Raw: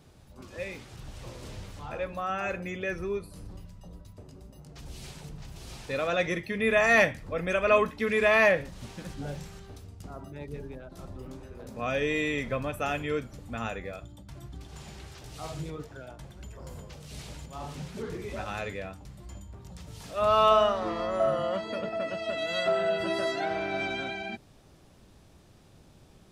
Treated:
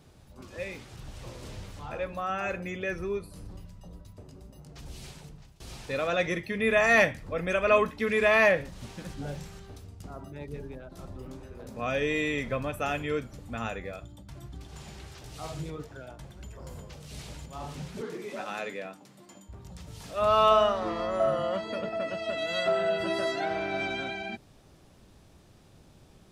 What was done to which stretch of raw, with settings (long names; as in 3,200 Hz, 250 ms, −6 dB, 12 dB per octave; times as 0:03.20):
0:04.80–0:05.60: fade out equal-power, to −20.5 dB
0:18.01–0:19.49: high-pass filter 190 Hz 24 dB per octave